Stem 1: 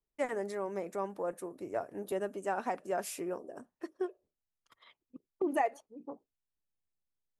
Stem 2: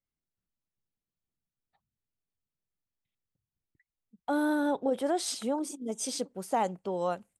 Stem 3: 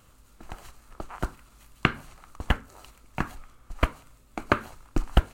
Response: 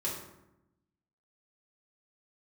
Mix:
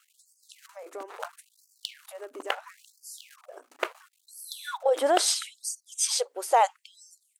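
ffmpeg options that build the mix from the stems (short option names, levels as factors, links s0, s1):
-filter_complex "[0:a]acompressor=threshold=0.0126:ratio=6,volume=1.33,asplit=3[s0][s1][s2];[s0]atrim=end=4.08,asetpts=PTS-STARTPTS,afade=t=out:st=4.076:d=0.004:c=hsin[s3];[s1]atrim=start=4.08:end=5.75,asetpts=PTS-STARTPTS,volume=0[s4];[s2]atrim=start=5.75,asetpts=PTS-STARTPTS,afade=t=in:d=0.004:c=hsin[s5];[s3][s4][s5]concat=n=3:v=0:a=1[s6];[1:a]equalizer=f=290:t=o:w=0.83:g=-13,acontrast=76,volume=1.33[s7];[2:a]aeval=exprs='max(val(0),0)':c=same,volume=1.19[s8];[s6][s7][s8]amix=inputs=3:normalize=0,afftfilt=real='re*gte(b*sr/1024,250*pow(4500/250,0.5+0.5*sin(2*PI*0.74*pts/sr)))':imag='im*gte(b*sr/1024,250*pow(4500/250,0.5+0.5*sin(2*PI*0.74*pts/sr)))':win_size=1024:overlap=0.75"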